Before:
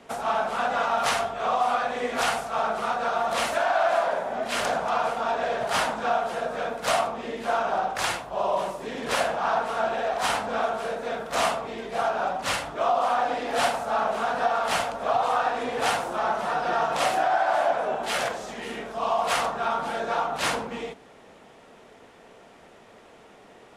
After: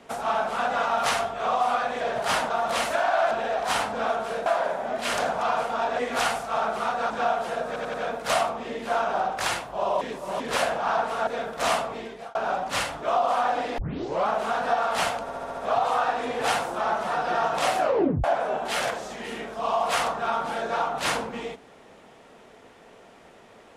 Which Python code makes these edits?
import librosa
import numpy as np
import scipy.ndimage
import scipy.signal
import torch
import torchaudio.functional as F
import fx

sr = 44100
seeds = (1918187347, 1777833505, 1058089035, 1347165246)

y = fx.edit(x, sr, fx.swap(start_s=2.01, length_s=1.11, other_s=5.46, other_length_s=0.49),
    fx.stutter(start_s=6.52, slice_s=0.09, count=4),
    fx.reverse_span(start_s=8.59, length_s=0.39),
    fx.move(start_s=9.85, length_s=1.15, to_s=3.93),
    fx.fade_out_span(start_s=11.71, length_s=0.37),
    fx.tape_start(start_s=13.51, length_s=0.51),
    fx.stutter(start_s=14.95, slice_s=0.07, count=6),
    fx.tape_stop(start_s=17.18, length_s=0.44), tone=tone)